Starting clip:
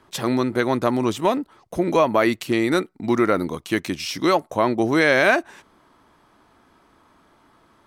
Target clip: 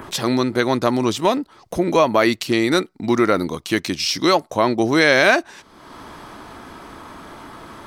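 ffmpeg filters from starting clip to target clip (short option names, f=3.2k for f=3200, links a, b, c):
-af "adynamicequalizer=threshold=0.00631:dfrequency=4800:dqfactor=1.3:tfrequency=4800:tqfactor=1.3:attack=5:release=100:ratio=0.375:range=4:mode=boostabove:tftype=bell,acompressor=mode=upward:threshold=-25dB:ratio=2.5,volume=2dB"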